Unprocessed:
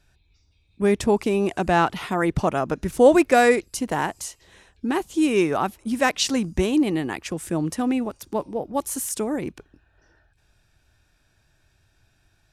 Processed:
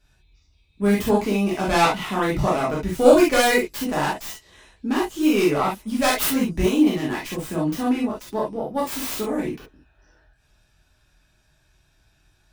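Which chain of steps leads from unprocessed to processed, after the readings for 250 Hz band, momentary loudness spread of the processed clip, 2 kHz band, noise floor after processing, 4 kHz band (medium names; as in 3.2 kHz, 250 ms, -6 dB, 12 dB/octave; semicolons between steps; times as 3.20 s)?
+1.5 dB, 10 LU, +1.0 dB, -63 dBFS, +2.5 dB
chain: tracing distortion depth 0.34 ms; gated-style reverb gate 90 ms flat, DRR -6.5 dB; trim -5.5 dB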